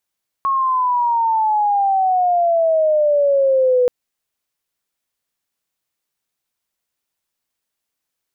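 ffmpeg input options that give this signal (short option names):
-f lavfi -i "aevalsrc='pow(10,(-14.5+3.5*t/3.43)/20)*sin(2*PI*1100*3.43/log(490/1100)*(exp(log(490/1100)*t/3.43)-1))':d=3.43:s=44100"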